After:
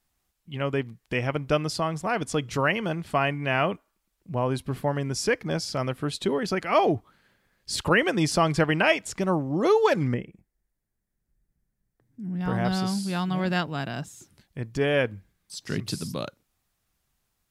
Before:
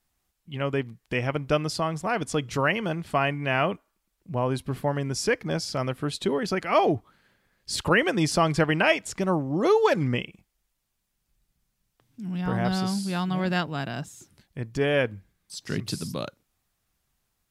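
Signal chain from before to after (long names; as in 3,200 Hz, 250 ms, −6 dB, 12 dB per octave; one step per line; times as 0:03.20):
0:10.14–0:12.41: drawn EQ curve 400 Hz 0 dB, 1,200 Hz −11 dB, 1,800 Hz −3 dB, 2,800 Hz −19 dB, 9,100 Hz −10 dB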